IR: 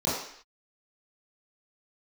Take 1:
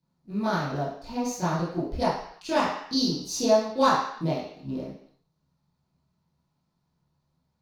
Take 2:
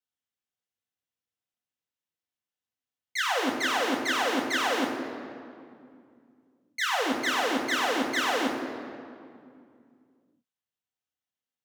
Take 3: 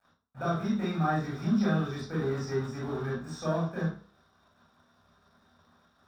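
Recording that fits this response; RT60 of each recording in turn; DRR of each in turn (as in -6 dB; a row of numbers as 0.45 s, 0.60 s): 1; no single decay rate, 2.3 s, 0.40 s; -11.5 dB, -2.5 dB, -8.0 dB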